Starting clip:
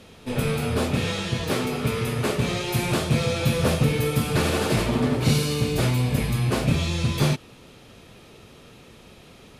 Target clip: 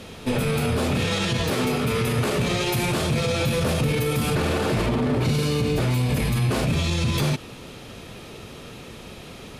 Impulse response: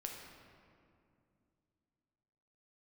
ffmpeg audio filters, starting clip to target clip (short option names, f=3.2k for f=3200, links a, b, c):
-filter_complex "[0:a]asettb=1/sr,asplit=3[a][b][c];[a]atrim=end=4.354[d];[b]atrim=start=4.35:end=5.91,asetpts=PTS-STARTPTS,afade=t=in:d=0.004:c=qsin,afade=t=out:st=1.556:d=0.004:c=qsin,highshelf=f=3.7k:g=-7[e];[c]atrim=start=5.906[f];[d][e]acrossfade=d=0.004:c1=hsin:c2=qsin[g];[g][f]acrossfade=d=0.004:c1=qsin:c2=hsin,alimiter=limit=-23dB:level=0:latency=1:release=40,volume=8dB"